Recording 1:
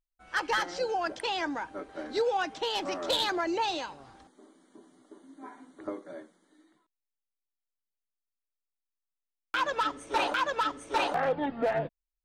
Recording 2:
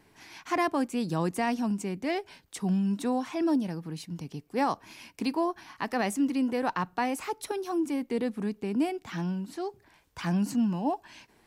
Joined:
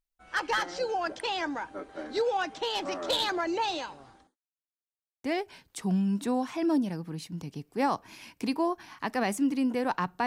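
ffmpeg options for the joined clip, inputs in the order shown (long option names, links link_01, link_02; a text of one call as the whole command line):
ffmpeg -i cue0.wav -i cue1.wav -filter_complex "[0:a]apad=whole_dur=10.26,atrim=end=10.26,asplit=2[link_01][link_02];[link_01]atrim=end=4.36,asetpts=PTS-STARTPTS,afade=type=out:start_time=3.94:duration=0.42:curve=qsin[link_03];[link_02]atrim=start=4.36:end=5.24,asetpts=PTS-STARTPTS,volume=0[link_04];[1:a]atrim=start=2.02:end=7.04,asetpts=PTS-STARTPTS,afade=type=in:duration=0.004:curve=hsin[link_05];[link_03][link_04][link_05]concat=n=3:v=0:a=1" out.wav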